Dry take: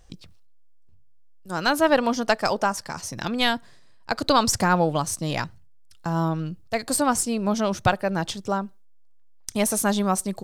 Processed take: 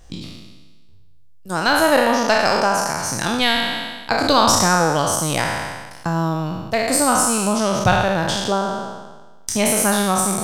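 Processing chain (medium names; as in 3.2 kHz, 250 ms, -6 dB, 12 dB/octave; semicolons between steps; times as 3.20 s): spectral sustain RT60 1.28 s; in parallel at +2.5 dB: compression, threshold -25 dBFS, peak gain reduction 14 dB; on the sum: trim -1.5 dB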